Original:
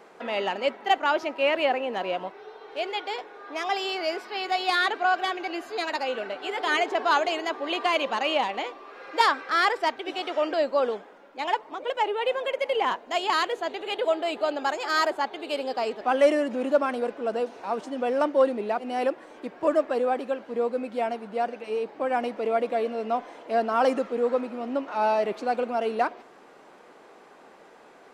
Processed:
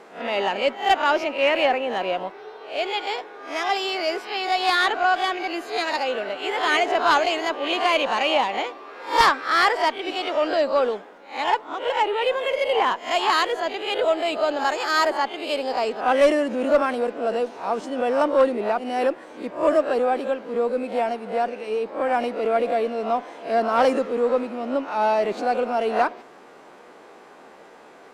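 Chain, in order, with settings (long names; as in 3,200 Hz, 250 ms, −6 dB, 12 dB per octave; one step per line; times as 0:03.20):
peak hold with a rise ahead of every peak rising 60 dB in 0.34 s
harmonic generator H 2 −8 dB, 4 −21 dB, 5 −27 dB, 8 −37 dB, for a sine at −7.5 dBFS
level +1.5 dB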